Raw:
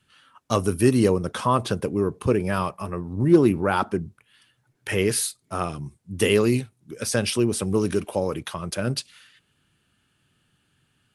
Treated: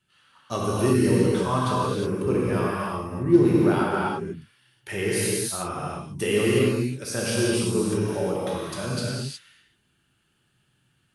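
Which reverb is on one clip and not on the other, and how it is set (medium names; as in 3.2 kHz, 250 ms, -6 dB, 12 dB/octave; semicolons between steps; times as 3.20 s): gated-style reverb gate 390 ms flat, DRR -6.5 dB; trim -8 dB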